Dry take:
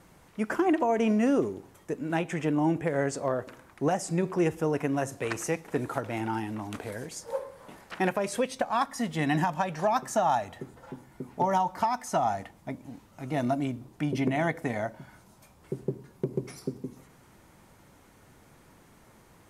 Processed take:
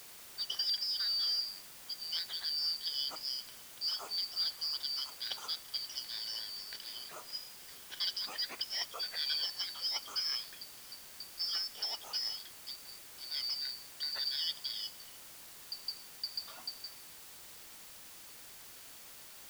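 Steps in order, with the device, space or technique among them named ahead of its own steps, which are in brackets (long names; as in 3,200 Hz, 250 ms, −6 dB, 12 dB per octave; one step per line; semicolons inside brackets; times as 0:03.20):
split-band scrambled radio (band-splitting scrambler in four parts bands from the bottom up 4321; band-pass filter 350–2,800 Hz; white noise bed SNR 12 dB)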